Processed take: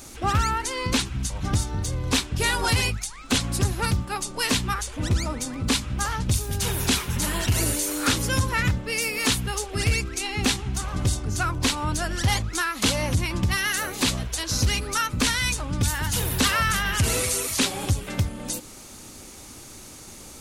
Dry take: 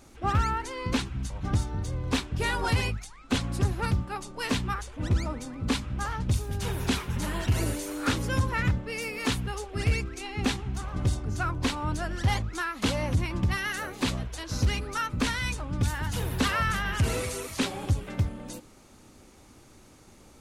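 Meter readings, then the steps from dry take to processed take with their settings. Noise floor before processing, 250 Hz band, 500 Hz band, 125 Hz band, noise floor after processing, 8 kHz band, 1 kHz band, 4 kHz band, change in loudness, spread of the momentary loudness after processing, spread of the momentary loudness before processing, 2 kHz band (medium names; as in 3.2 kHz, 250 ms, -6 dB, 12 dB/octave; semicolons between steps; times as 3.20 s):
-54 dBFS, +2.5 dB, +3.0 dB, +2.5 dB, -43 dBFS, +12.5 dB, +4.0 dB, +9.0 dB, +5.0 dB, 7 LU, 6 LU, +5.5 dB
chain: treble shelf 3.4 kHz +12 dB; in parallel at +2.5 dB: compression, threshold -36 dBFS, peak gain reduction 16 dB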